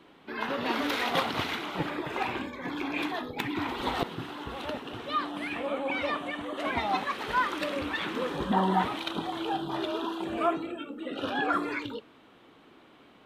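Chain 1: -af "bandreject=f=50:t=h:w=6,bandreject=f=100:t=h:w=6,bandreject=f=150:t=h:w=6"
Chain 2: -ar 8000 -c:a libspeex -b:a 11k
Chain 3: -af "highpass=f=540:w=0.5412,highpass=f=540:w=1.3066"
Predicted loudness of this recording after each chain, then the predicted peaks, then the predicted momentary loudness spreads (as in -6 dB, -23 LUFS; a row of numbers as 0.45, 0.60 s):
-31.5, -32.0, -33.0 LUFS; -13.5, -14.0, -14.5 dBFS; 8, 9, 10 LU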